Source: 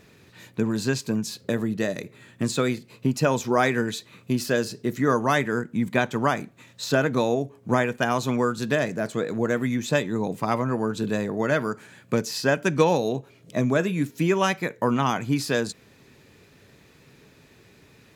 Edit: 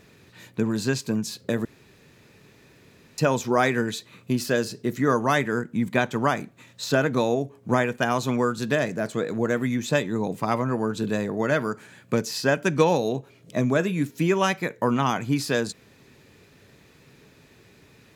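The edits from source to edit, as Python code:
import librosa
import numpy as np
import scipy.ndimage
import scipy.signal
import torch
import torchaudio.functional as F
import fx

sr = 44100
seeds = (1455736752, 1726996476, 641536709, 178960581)

y = fx.edit(x, sr, fx.room_tone_fill(start_s=1.65, length_s=1.53), tone=tone)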